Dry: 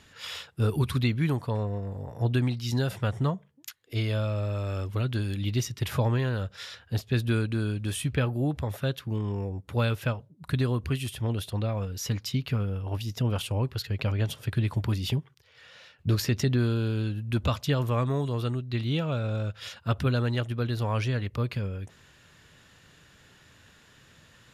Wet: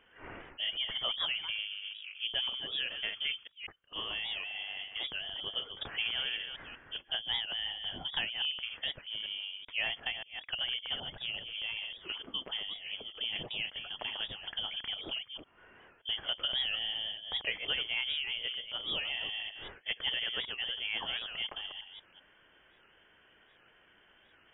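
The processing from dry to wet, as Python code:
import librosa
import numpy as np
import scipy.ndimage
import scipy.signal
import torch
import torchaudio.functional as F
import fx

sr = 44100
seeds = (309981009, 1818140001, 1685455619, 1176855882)

y = fx.reverse_delay(x, sr, ms=193, wet_db=-7)
y = scipy.signal.sosfilt(scipy.signal.butter(2, 200.0, 'highpass', fs=sr, output='sos'), y)
y = fx.freq_invert(y, sr, carrier_hz=3300)
y = fx.record_warp(y, sr, rpm=78.0, depth_cents=160.0)
y = F.gain(torch.from_numpy(y), -5.5).numpy()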